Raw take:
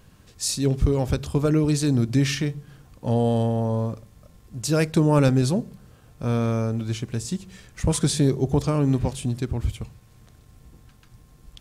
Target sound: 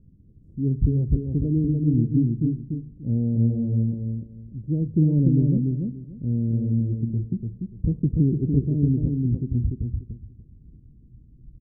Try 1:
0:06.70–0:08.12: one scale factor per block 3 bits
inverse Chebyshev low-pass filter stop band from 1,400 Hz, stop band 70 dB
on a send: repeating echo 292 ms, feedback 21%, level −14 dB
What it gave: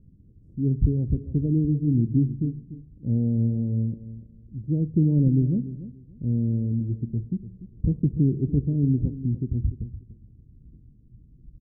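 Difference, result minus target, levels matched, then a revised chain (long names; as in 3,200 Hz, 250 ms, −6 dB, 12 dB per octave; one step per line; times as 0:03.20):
echo-to-direct −10.5 dB
0:06.70–0:08.12: one scale factor per block 3 bits
inverse Chebyshev low-pass filter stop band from 1,400 Hz, stop band 70 dB
on a send: repeating echo 292 ms, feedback 21%, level −3.5 dB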